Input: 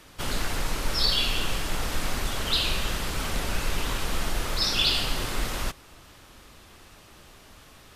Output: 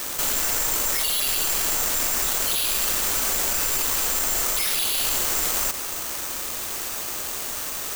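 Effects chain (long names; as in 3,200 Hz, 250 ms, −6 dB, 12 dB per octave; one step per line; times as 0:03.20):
wavefolder on the positive side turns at −22 dBFS
low-pass filter 11,000 Hz
bass and treble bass −12 dB, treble −5 dB
bad sample-rate conversion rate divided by 6×, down none, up zero stuff
boost into a limiter +16.5 dB
envelope flattener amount 50%
level −8 dB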